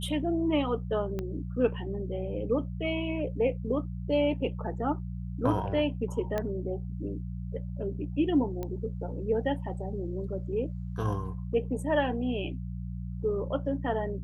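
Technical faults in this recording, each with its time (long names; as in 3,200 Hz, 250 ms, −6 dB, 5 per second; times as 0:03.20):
mains hum 60 Hz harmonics 3 −36 dBFS
0:01.19: click −21 dBFS
0:06.38: click −18 dBFS
0:08.63: click −22 dBFS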